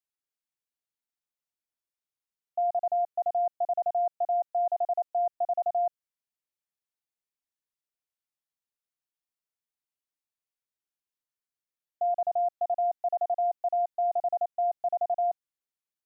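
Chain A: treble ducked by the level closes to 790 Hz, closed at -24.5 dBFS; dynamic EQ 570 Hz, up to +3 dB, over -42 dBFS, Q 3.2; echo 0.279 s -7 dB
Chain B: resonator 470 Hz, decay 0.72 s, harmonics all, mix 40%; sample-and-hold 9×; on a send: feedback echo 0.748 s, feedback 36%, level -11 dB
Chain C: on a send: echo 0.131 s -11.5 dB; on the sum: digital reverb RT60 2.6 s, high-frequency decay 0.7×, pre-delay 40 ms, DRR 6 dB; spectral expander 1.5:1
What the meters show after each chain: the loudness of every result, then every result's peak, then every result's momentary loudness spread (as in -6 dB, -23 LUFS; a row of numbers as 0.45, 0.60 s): -31.0, -33.5, -30.5 LUFS; -21.0, -26.5, -20.0 dBFS; 3, 12, 3 LU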